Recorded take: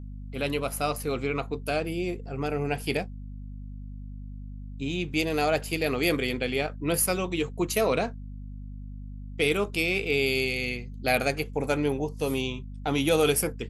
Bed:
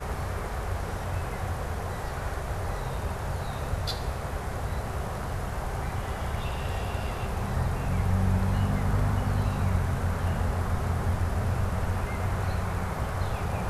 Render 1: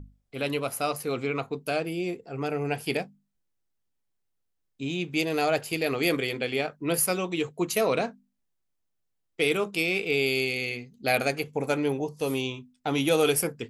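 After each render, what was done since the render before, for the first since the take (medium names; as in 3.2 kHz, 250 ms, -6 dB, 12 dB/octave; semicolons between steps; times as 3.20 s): hum notches 50/100/150/200/250 Hz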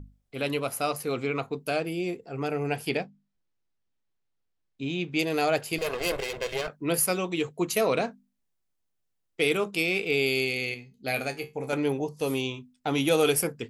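2.89–5.19 s: low-pass 5.2 kHz; 5.78–6.68 s: comb filter that takes the minimum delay 1.9 ms; 10.74–11.73 s: feedback comb 65 Hz, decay 0.2 s, mix 80%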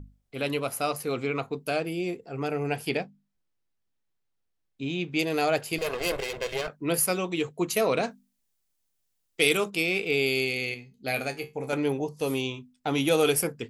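8.03–9.70 s: treble shelf 3.1 kHz +10 dB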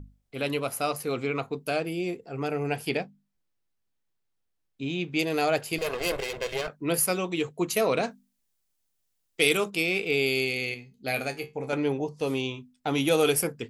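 11.46–12.59 s: Bessel low-pass 6.4 kHz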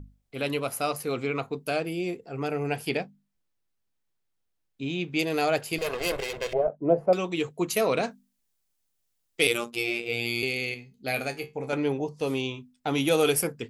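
6.53–7.13 s: resonant low-pass 640 Hz, resonance Q 4.3; 9.47–10.43 s: robot voice 118 Hz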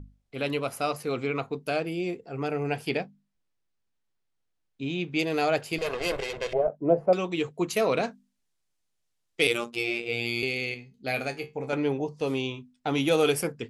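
low-pass 12 kHz 12 dB/octave; treble shelf 9.4 kHz -9.5 dB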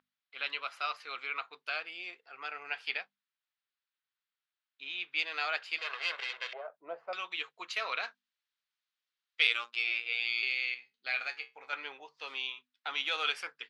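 Chebyshev band-pass 1.3–4 kHz, order 2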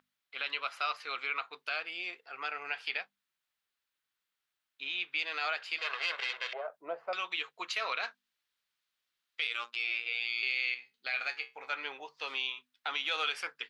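in parallel at -2 dB: compression, threshold -41 dBFS, peak gain reduction 18.5 dB; on the sum: peak limiter -21 dBFS, peak gain reduction 9.5 dB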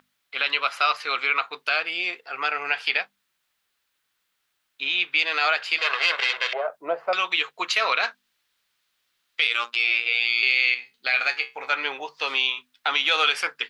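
trim +12 dB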